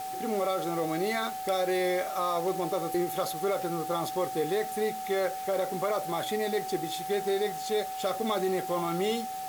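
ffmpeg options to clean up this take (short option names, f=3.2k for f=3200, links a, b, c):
-af "bandreject=f=433.5:t=h:w=4,bandreject=f=867:t=h:w=4,bandreject=f=1.3005k:t=h:w=4,bandreject=f=1.734k:t=h:w=4,bandreject=f=760:w=30,afwtdn=0.005"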